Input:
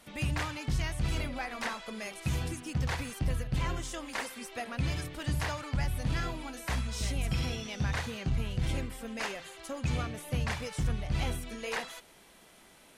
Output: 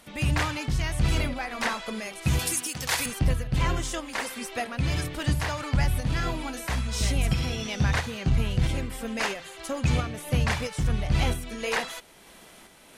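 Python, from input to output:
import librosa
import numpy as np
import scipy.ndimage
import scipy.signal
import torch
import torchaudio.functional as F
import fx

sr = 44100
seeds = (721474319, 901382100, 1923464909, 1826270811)

y = fx.riaa(x, sr, side='recording', at=(2.39, 3.06))
y = fx.volume_shaper(y, sr, bpm=90, per_beat=1, depth_db=-4, release_ms=265.0, shape='slow start')
y = y * librosa.db_to_amplitude(7.5)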